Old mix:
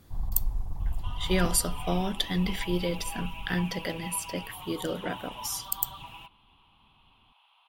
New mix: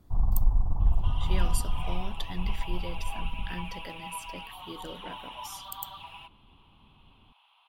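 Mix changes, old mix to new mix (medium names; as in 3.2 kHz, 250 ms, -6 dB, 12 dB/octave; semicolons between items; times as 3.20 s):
speech -10.5 dB; first sound +7.0 dB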